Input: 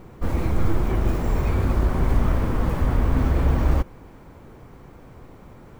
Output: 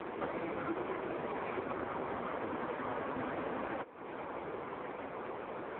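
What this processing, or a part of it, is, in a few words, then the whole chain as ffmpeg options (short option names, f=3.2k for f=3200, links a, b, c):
voicemail: -af "highpass=410,lowpass=3.2k,acompressor=threshold=-48dB:ratio=6,volume=14dB" -ar 8000 -c:a libopencore_amrnb -b:a 4750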